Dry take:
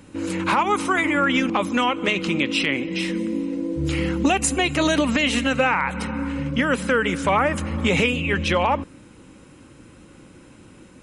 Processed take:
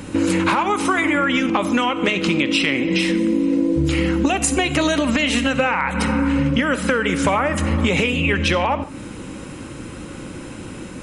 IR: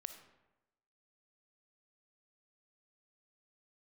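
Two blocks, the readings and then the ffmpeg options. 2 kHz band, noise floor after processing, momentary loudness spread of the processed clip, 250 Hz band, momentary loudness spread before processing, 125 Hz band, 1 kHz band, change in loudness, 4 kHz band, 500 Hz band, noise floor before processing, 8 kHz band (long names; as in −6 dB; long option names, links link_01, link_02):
+2.0 dB, −34 dBFS, 16 LU, +4.5 dB, 6 LU, +4.0 dB, +1.0 dB, +3.0 dB, +2.5 dB, +2.0 dB, −48 dBFS, +3.0 dB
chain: -filter_complex "[0:a]acompressor=threshold=-29dB:ratio=10,asplit=2[link_01][link_02];[1:a]atrim=start_sample=2205,afade=type=out:start_time=0.21:duration=0.01,atrim=end_sample=9702[link_03];[link_02][link_03]afir=irnorm=-1:irlink=0,volume=10.5dB[link_04];[link_01][link_04]amix=inputs=2:normalize=0,volume=4dB"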